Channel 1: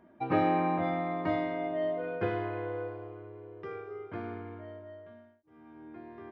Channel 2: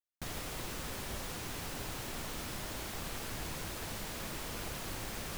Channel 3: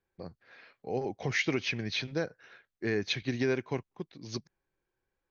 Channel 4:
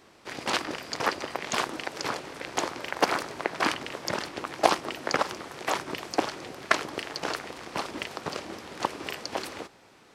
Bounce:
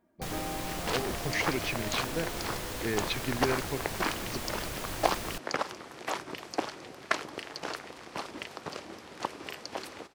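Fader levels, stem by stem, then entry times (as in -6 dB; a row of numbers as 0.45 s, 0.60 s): -11.5 dB, +3.0 dB, -2.0 dB, -5.5 dB; 0.00 s, 0.00 s, 0.00 s, 0.40 s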